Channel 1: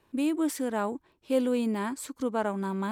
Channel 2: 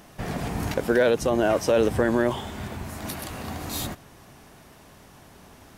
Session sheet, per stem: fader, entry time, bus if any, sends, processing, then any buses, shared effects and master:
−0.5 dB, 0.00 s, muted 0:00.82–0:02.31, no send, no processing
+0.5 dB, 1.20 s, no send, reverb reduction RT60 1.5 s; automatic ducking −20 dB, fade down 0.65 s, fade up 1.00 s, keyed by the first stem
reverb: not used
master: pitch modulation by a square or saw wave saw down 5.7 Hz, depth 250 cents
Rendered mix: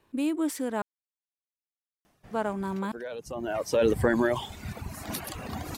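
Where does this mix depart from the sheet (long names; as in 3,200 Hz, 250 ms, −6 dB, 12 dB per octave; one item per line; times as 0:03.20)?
stem 2: entry 1.20 s → 2.05 s
master: missing pitch modulation by a square or saw wave saw down 5.7 Hz, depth 250 cents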